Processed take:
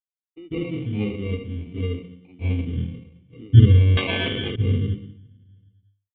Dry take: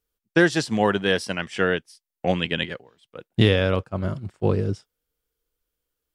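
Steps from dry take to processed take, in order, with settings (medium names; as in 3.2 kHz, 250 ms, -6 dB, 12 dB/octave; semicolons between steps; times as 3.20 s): 2.56–3.45 s: peaking EQ 140 Hz +3.5 dB 1.9 oct; touch-sensitive flanger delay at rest 10.5 ms, full sweep at -19 dBFS; hum notches 50/100/150/200/250/300 Hz; word length cut 10-bit, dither none; reverberation RT60 0.65 s, pre-delay 144 ms, DRR -20 dB; sample-and-hold 27×; cascade formant filter i; peaking EQ 570 Hz -3.5 dB 0.2 oct; 3.97–4.56 s: spectrum-flattening compressor 10:1; trim -15 dB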